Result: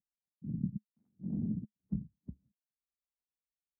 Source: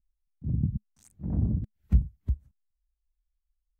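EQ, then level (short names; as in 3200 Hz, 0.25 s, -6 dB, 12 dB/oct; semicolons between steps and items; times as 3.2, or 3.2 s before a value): ladder band-pass 240 Hz, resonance 45%; +4.5 dB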